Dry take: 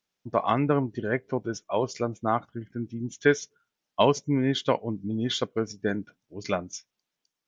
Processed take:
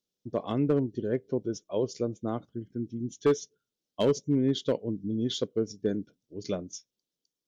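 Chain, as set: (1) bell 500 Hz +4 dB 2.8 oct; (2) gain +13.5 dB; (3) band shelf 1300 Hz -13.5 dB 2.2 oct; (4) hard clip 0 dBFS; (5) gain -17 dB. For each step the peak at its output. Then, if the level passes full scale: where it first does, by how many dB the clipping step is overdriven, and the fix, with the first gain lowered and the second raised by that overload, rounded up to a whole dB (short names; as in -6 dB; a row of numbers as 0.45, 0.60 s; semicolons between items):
-4.5, +9.0, +6.0, 0.0, -17.0 dBFS; step 2, 6.0 dB; step 2 +7.5 dB, step 5 -11 dB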